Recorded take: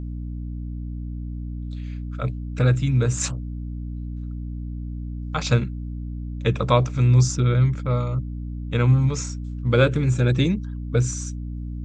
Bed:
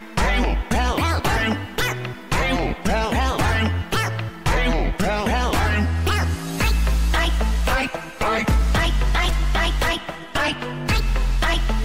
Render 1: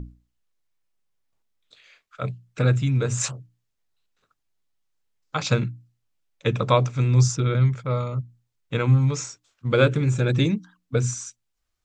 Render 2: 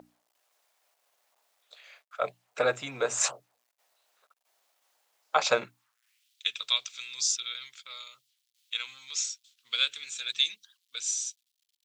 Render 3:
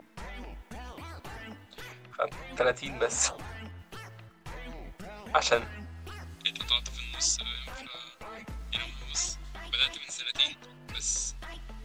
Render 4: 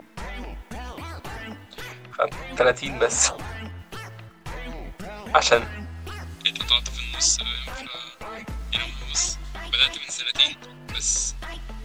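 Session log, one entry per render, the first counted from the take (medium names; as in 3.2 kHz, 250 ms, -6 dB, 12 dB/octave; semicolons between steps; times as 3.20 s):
hum notches 60/120/180/240/300 Hz
word length cut 12-bit, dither none; high-pass sweep 660 Hz -> 3.5 kHz, 5.65–6.32 s
add bed -23 dB
trim +7.5 dB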